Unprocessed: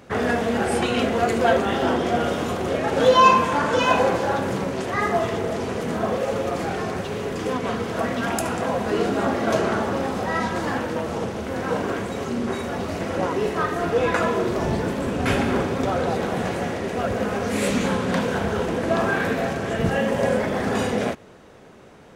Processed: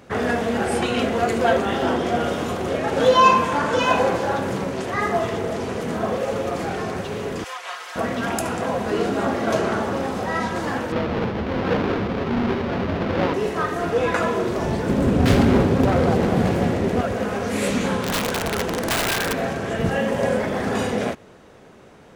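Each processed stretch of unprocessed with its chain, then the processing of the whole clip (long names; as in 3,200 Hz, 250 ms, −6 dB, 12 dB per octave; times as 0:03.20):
0:07.44–0:07.96: Bessel high-pass filter 1,200 Hz, order 4 + comb filter 5.6 ms, depth 69%
0:10.92–0:13.34: each half-wave held at its own peak + high-frequency loss of the air 280 metres
0:14.89–0:17.01: phase distortion by the signal itself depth 0.35 ms + low-shelf EQ 430 Hz +10.5 dB
0:18.02–0:19.33: high-shelf EQ 2,100 Hz +2 dB + mains-hum notches 50/100/150/200/250/300 Hz + wrap-around overflow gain 16 dB
whole clip: no processing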